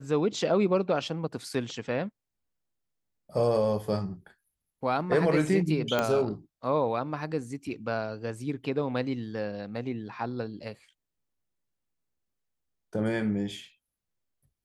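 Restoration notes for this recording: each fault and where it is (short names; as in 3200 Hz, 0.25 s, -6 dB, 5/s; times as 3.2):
5.99 pop -12 dBFS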